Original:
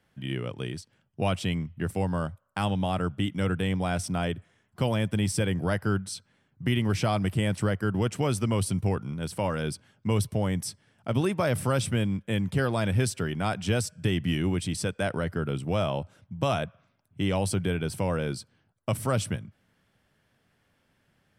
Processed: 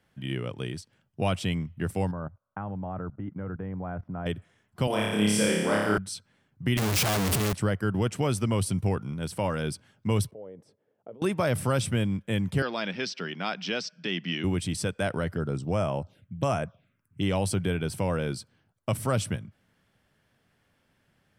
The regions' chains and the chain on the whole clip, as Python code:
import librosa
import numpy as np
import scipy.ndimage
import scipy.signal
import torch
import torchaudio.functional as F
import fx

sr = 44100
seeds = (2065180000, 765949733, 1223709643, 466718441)

y = fx.chain(x, sr, fx.lowpass(hz=1500.0, slope=24),
    fx.level_steps(step_db=17), at=(2.11, 4.26))
y = fx.chain(y, sr, fx.highpass(hz=240.0, slope=12),
    fx.room_flutter(wall_m=4.9, rt60_s=1.2), at=(4.87, 5.98))
y = fx.chain(y, sr, fx.clip_1bit(),
    fx.highpass(hz=55.0, slope=12),
    fx.high_shelf(hz=4900.0, db=4.0), at=(6.77, 7.53))
y = fx.chain(y, sr, fx.over_compress(threshold_db=-31.0, ratio=-1.0),
    fx.bandpass_q(hz=470.0, q=4.2), at=(10.31, 11.22))
y = fx.chain(y, sr, fx.cheby1_bandpass(low_hz=170.0, high_hz=5400.0, order=4),
    fx.tilt_shelf(db=-5.0, hz=1300.0), at=(12.62, 14.44))
y = fx.chain(y, sr, fx.dynamic_eq(hz=4700.0, q=0.92, threshold_db=-50.0, ratio=4.0, max_db=6),
    fx.env_phaser(low_hz=600.0, high_hz=3800.0, full_db=-24.0), at=(15.36, 17.23))